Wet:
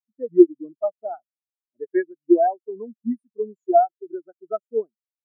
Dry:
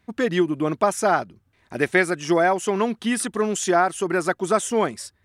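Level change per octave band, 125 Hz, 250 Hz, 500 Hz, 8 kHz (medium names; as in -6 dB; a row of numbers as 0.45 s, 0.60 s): under -20 dB, +1.0 dB, 0.0 dB, under -40 dB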